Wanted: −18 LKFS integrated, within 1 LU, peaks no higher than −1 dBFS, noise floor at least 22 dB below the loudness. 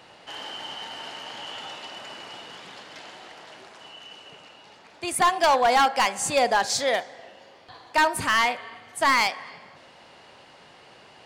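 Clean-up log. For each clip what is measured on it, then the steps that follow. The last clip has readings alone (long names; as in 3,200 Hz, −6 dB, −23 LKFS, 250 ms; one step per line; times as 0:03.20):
share of clipped samples 0.8%; peaks flattened at −14.5 dBFS; integrated loudness −23.5 LKFS; sample peak −14.5 dBFS; target loudness −18.0 LKFS
→ clipped peaks rebuilt −14.5 dBFS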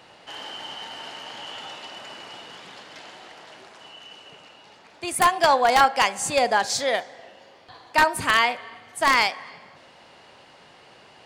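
share of clipped samples 0.0%; integrated loudness −21.5 LKFS; sample peak −5.5 dBFS; target loudness −18.0 LKFS
→ level +3.5 dB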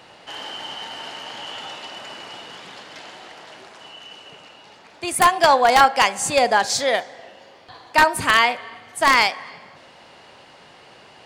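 integrated loudness −18.0 LKFS; sample peak −2.0 dBFS; background noise floor −48 dBFS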